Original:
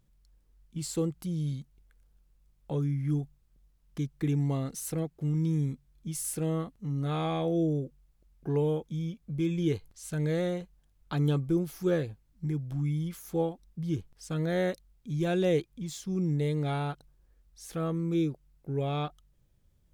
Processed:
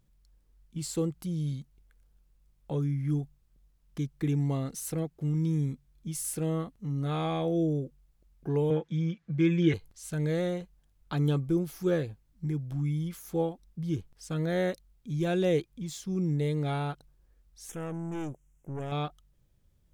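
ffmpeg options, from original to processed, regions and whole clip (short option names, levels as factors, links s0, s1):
-filter_complex "[0:a]asettb=1/sr,asplit=3[s0][s1][s2];[s0]atrim=end=8.704[s3];[s1]atrim=start=8.7:end=9.74,asetpts=PTS-STARTPTS,afade=t=in:d=0.004:c=qsin,afade=t=out:st=1.036:d=0.004:c=qsin,highpass=110,lowpass=5600,equalizer=f=1700:w=1.5:g=11.5,aecho=1:1:6:0.73,atrim=end_sample=45864[s4];[s2]atrim=start=9.736[s5];[s3][s4]acrossfade=d=0.004:c1=hsin:c2=qsin[s6];[s6][s5]acrossfade=d=0.004:c1=qsin:c2=hsin,asettb=1/sr,asplit=3[s7][s8][s9];[s7]atrim=end=17.694[s10];[s8]atrim=start=17.69:end=18.92,asetpts=PTS-STARTPTS,afade=t=in:d=0.004:c=qsin,afade=t=out:st=1.226:d=0.004:c=qsin,equalizer=f=7100:t=o:w=1.1:g=12.5,aeval=exprs='(tanh(44.7*val(0)+0.45)-tanh(0.45))/44.7':c=same,asuperstop=centerf=4400:order=4:qfactor=1.5[s11];[s9]atrim=start=18.916[s12];[s10][s11]acrossfade=d=0.004:c1=hsin:c2=qsin[s13];[s13][s12]acrossfade=d=0.004:c1=qsin:c2=hsin"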